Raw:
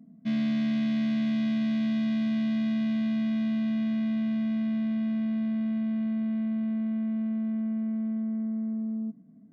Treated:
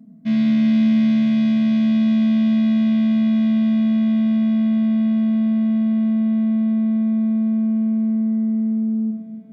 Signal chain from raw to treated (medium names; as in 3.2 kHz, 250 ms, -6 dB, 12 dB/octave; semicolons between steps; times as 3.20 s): echo that smears into a reverb 775 ms, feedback 55%, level -15 dB; reverberation RT60 1.6 s, pre-delay 5 ms, DRR 2.5 dB; trim +4 dB